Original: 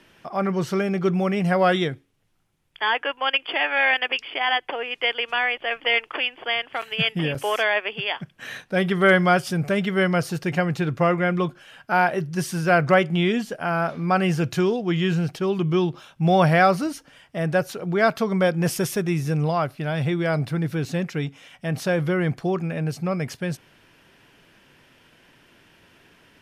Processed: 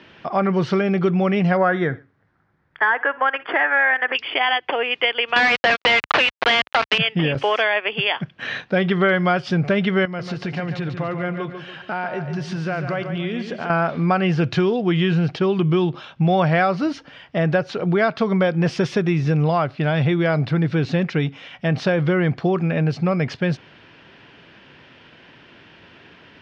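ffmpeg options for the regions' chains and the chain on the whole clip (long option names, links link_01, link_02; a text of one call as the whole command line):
ffmpeg -i in.wav -filter_complex "[0:a]asettb=1/sr,asplit=3[link_01][link_02][link_03];[link_01]atrim=end=1.574[link_04];[link_02]atrim=start=1.57:end=4.15,asetpts=PTS-STARTPTS,afade=type=in:duration=0.004:curve=qsin,afade=type=out:start_time=2.576:duration=0.004:curve=qsin,highshelf=frequency=2200:width_type=q:width=3:gain=-8.5,aecho=1:1:61|122:0.0794|0.0262,atrim=end_sample=113778[link_05];[link_03]atrim=start=4.146[link_06];[link_04][link_05]acrossfade=duration=0.004:curve1=hsin:curve2=qsin[link_07];[link_07][link_06]acrossfade=duration=0.004:curve1=qsin:curve2=hsin,asettb=1/sr,asplit=3[link_08][link_09][link_10];[link_08]atrim=end=5.364[link_11];[link_09]atrim=start=5.36:end=6.98,asetpts=PTS-STARTPTS,afade=type=in:duration=0.004:curve=qsin,afade=type=out:start_time=1.616:duration=0.004:curve=qsin,highshelf=frequency=3900:gain=-5,acrusher=bits=4:mix=0:aa=0.5,asplit=2[link_12][link_13];[link_13]highpass=frequency=720:poles=1,volume=30dB,asoftclip=type=tanh:threshold=-8.5dB[link_14];[link_12][link_14]amix=inputs=2:normalize=0,lowpass=frequency=4300:poles=1,volume=-6dB[link_15];[link_10]atrim=start=6.976[link_16];[link_11][link_15]acrossfade=duration=0.004:curve1=hsin:curve2=qsin[link_17];[link_17][link_16]acrossfade=duration=0.004:curve1=qsin:curve2=hsin,asettb=1/sr,asplit=3[link_18][link_19][link_20];[link_18]atrim=end=10.054[link_21];[link_19]atrim=start=10.05:end=13.7,asetpts=PTS-STARTPTS,afade=type=in:duration=0.004:curve=qsin,afade=type=out:start_time=3.646:duration=0.004:curve=qsin,acompressor=threshold=-33dB:ratio=4:attack=3.2:release=140:knee=1:detection=peak,aecho=1:1:143|286|429|572|715:0.398|0.159|0.0637|0.0255|0.0102,atrim=end_sample=160965[link_22];[link_20]atrim=start=13.696[link_23];[link_21][link_22]acrossfade=duration=0.004:curve1=hsin:curve2=qsin[link_24];[link_24][link_23]acrossfade=duration=0.004:curve1=qsin:curve2=hsin,highpass=61,acompressor=threshold=-24dB:ratio=4,lowpass=frequency=4500:width=0.5412,lowpass=frequency=4500:width=1.3066,volume=8dB" out.wav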